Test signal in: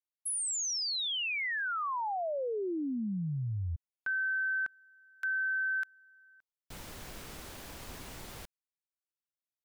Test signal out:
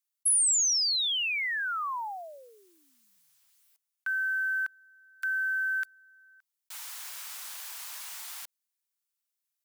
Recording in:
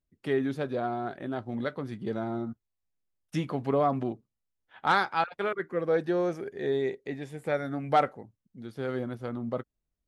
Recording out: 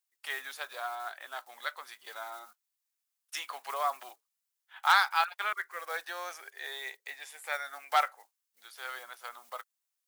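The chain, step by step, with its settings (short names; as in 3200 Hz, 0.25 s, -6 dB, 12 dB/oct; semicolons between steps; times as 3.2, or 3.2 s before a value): block floating point 7-bit; HPF 890 Hz 24 dB/oct; high shelf 4600 Hz +10.5 dB; gain +1.5 dB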